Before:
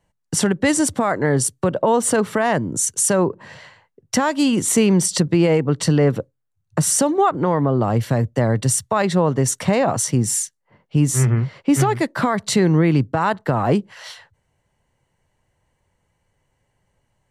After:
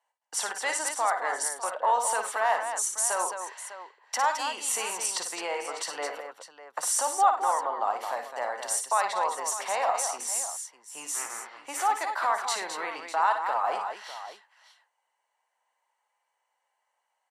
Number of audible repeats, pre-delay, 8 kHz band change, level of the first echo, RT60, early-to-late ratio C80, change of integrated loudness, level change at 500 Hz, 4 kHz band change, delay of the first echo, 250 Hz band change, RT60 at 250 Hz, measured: 4, no reverb, -7.0 dB, -6.5 dB, no reverb, no reverb, -9.5 dB, -14.0 dB, -7.0 dB, 55 ms, -33.0 dB, no reverb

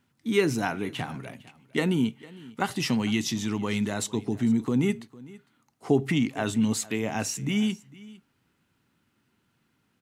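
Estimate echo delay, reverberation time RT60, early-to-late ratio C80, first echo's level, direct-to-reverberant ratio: 454 ms, no reverb, no reverb, -21.0 dB, no reverb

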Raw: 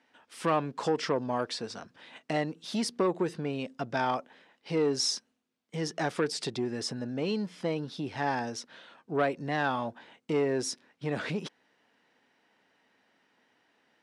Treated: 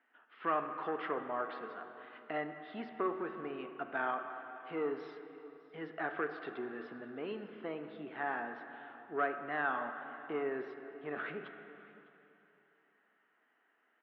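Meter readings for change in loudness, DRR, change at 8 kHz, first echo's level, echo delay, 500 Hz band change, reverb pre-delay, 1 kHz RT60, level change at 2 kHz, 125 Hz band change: -7.5 dB, 6.0 dB, under -40 dB, -21.0 dB, 606 ms, -8.0 dB, 5 ms, 2.9 s, -2.5 dB, -19.0 dB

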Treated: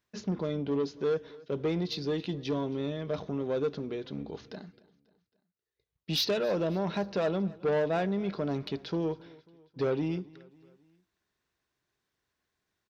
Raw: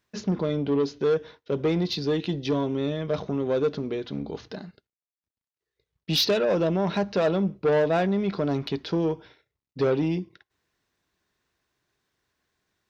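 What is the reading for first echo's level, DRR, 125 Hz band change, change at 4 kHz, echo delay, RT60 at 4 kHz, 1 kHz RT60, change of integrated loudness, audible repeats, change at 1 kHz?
-22.5 dB, no reverb, -6.0 dB, -6.0 dB, 271 ms, no reverb, no reverb, -6.0 dB, 3, -6.0 dB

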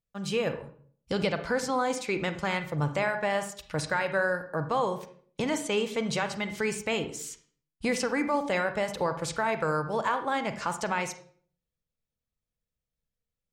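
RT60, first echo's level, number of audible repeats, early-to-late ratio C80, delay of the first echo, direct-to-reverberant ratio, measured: 0.50 s, no echo, no echo, 14.0 dB, no echo, 8.5 dB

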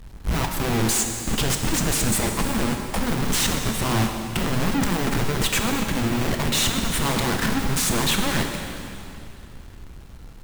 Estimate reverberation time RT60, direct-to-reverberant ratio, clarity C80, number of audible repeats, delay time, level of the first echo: 2.8 s, 3.5 dB, 5.5 dB, no echo, no echo, no echo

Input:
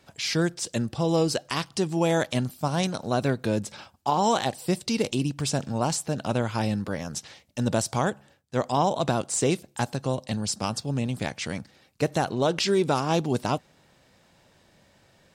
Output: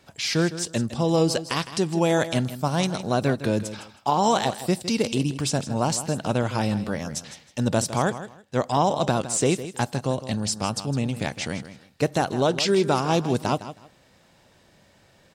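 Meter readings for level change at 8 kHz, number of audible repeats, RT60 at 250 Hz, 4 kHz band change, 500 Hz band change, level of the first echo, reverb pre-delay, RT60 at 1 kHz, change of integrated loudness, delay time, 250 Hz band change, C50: +2.0 dB, 2, no reverb, +2.0 dB, +2.5 dB, -13.0 dB, no reverb, no reverb, +2.0 dB, 159 ms, +2.5 dB, no reverb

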